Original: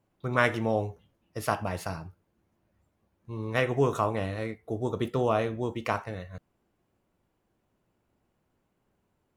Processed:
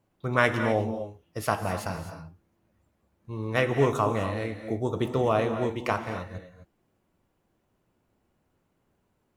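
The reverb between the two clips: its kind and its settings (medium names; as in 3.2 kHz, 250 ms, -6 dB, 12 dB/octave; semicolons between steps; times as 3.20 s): gated-style reverb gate 280 ms rising, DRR 8 dB; trim +1.5 dB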